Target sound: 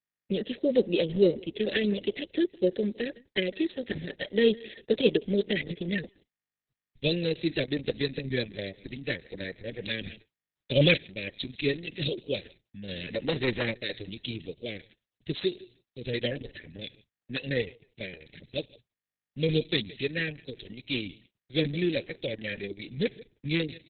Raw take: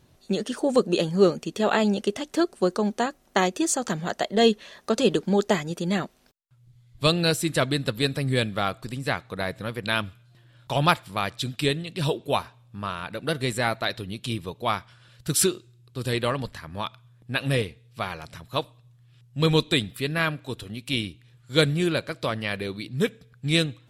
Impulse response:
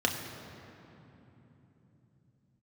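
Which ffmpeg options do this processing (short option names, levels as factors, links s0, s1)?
-filter_complex "[0:a]aeval=exprs='val(0)+0.00355*sin(2*PI*1200*n/s)':c=same,asuperstop=centerf=1000:order=20:qfactor=0.91,aecho=1:1:160|320:0.0668|0.0207,agate=range=0.001:threshold=0.00398:ratio=16:detection=peak,asplit=3[s0][s1][s2];[s0]afade=t=out:st=15.33:d=0.02[s3];[s1]lowshelf=f=250:g=-5.5,afade=t=in:st=15.33:d=0.02,afade=t=out:st=15.99:d=0.02[s4];[s2]afade=t=in:st=15.99:d=0.02[s5];[s3][s4][s5]amix=inputs=3:normalize=0,acrossover=split=220|1200[s6][s7][s8];[s8]asoftclip=type=tanh:threshold=0.126[s9];[s6][s7][s9]amix=inputs=3:normalize=0,asplit=3[s10][s11][s12];[s10]afade=t=out:st=12.88:d=0.02[s13];[s11]aeval=exprs='0.211*(cos(1*acos(clip(val(0)/0.211,-1,1)))-cos(1*PI/2))+0.015*(cos(2*acos(clip(val(0)/0.211,-1,1)))-cos(2*PI/2))+0.0473*(cos(5*acos(clip(val(0)/0.211,-1,1)))-cos(5*PI/2))':c=same,afade=t=in:st=12.88:d=0.02,afade=t=out:st=13.71:d=0.02[s14];[s12]afade=t=in:st=13.71:d=0.02[s15];[s13][s14][s15]amix=inputs=3:normalize=0,equalizer=f=79:w=0.59:g=-7.5,asettb=1/sr,asplit=3[s16][s17][s18];[s16]atrim=end=10.064[s19];[s17]atrim=start=10.06:end=10.98,asetpts=PTS-STARTPTS,afade=t=in:d=0.004:c=qsin,afade=t=out:st=0.916:d=0.004:c=qsin,acontrast=85[s20];[s18]atrim=start=10.976[s21];[s19][s20]acrossfade=d=0.004:c1=hsin:c2=qsin[s22];[s22][s21]acrossfade=d=0.004:c1=qsin:c2=hsin,volume=0.891" -ar 48000 -c:a libopus -b:a 6k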